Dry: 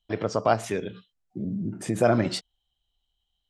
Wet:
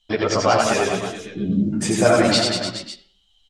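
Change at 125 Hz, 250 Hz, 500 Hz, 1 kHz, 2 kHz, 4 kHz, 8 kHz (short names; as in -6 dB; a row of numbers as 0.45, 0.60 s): +5.0, +8.0, +7.0, +7.5, +11.0, +15.5, +14.0 dB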